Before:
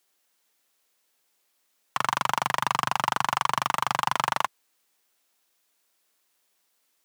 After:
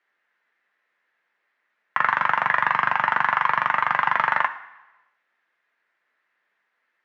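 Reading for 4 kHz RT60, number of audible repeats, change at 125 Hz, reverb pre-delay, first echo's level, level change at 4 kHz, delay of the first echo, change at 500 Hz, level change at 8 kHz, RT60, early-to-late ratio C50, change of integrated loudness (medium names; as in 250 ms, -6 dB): 1.0 s, no echo, -3.5 dB, 3 ms, no echo, -6.0 dB, no echo, +1.0 dB, under -20 dB, 1.0 s, 12.5 dB, +5.0 dB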